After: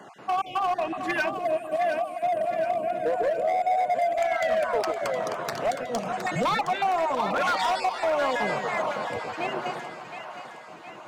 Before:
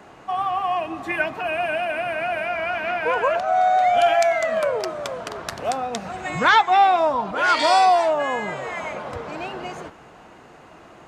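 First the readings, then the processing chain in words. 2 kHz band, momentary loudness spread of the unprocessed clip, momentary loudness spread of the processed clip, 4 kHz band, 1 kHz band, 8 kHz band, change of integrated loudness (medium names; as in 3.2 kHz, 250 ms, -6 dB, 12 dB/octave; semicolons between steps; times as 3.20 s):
-7.0 dB, 15 LU, 8 LU, -7.0 dB, -6.5 dB, -5.0 dB, -5.5 dB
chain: random holes in the spectrogram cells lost 29%; high-pass 120 Hz 24 dB/octave; time-frequency box 1.29–4.17 s, 740–6800 Hz -19 dB; dynamic bell 850 Hz, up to +4 dB, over -32 dBFS, Q 0.73; compression 8:1, threshold -20 dBFS, peak gain reduction 11 dB; hard clipper -21 dBFS, distortion -14 dB; two-band feedback delay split 600 Hz, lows 154 ms, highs 715 ms, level -8.5 dB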